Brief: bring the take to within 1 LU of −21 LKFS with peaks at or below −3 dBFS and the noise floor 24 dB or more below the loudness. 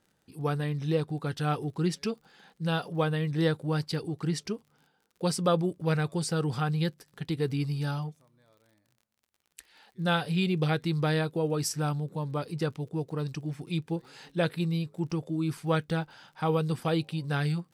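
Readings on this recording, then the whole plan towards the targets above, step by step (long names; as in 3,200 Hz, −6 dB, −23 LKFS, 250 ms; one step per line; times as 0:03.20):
crackle rate 43 per second; integrated loudness −30.5 LKFS; sample peak −13.5 dBFS; target loudness −21.0 LKFS
→ click removal
level +9.5 dB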